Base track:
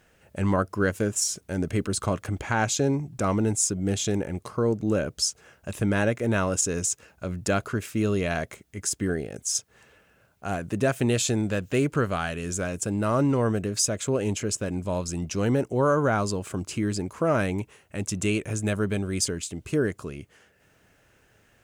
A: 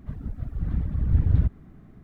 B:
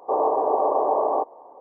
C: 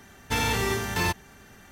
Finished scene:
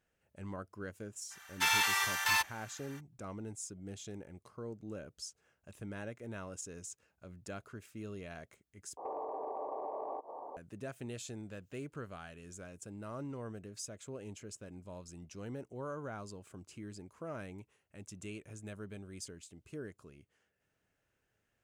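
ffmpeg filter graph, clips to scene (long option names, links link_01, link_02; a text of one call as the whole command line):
ffmpeg -i bed.wav -i cue0.wav -i cue1.wav -i cue2.wav -filter_complex "[0:a]volume=-20dB[link_01];[3:a]highpass=frequency=920:width=0.5412,highpass=frequency=920:width=1.3066[link_02];[2:a]acompressor=threshold=-39dB:ratio=6:attack=3.2:release=140:knee=1:detection=peak[link_03];[link_01]asplit=2[link_04][link_05];[link_04]atrim=end=8.974[link_06];[link_03]atrim=end=1.6[link_07];[link_05]atrim=start=10.566[link_08];[link_02]atrim=end=1.71,asetpts=PTS-STARTPTS,volume=-1dB,afade=type=in:duration=0.02,afade=type=out:start_time=1.69:duration=0.02,adelay=1300[link_09];[link_06][link_07]acrossfade=duration=0.004:curve1=hsin:curve2=hsin[link_10];[link_10][link_08]acrossfade=duration=0.004:curve1=hsin:curve2=hsin[link_11];[link_11][link_09]amix=inputs=2:normalize=0" out.wav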